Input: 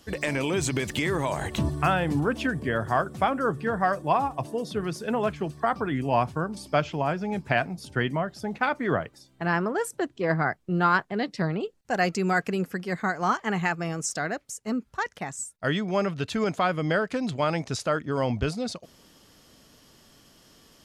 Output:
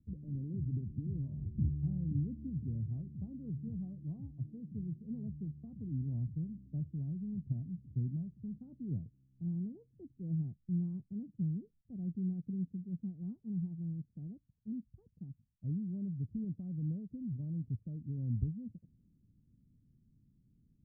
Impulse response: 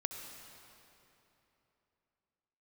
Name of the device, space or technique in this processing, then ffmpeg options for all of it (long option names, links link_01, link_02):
the neighbour's flat through the wall: -af "lowpass=frequency=210:width=0.5412,lowpass=frequency=210:width=1.3066,equalizer=frequency=110:width_type=o:width=0.63:gain=4,volume=-6dB"